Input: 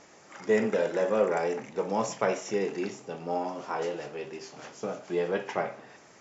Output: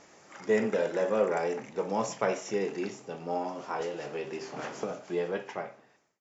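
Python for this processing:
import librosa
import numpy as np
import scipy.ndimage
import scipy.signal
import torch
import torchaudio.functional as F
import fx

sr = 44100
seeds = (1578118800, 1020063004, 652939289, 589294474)

y = fx.fade_out_tail(x, sr, length_s=1.11)
y = fx.band_squash(y, sr, depth_pct=100, at=(3.8, 4.91))
y = y * 10.0 ** (-1.5 / 20.0)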